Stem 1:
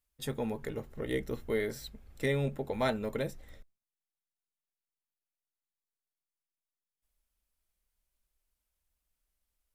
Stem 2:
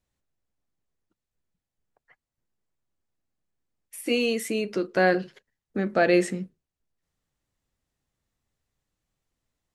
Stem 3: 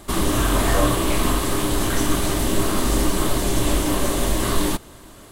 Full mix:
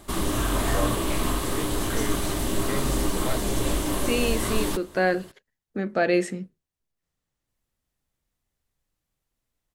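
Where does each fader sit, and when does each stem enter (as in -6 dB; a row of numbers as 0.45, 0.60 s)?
-2.5, -1.5, -5.5 dB; 0.45, 0.00, 0.00 s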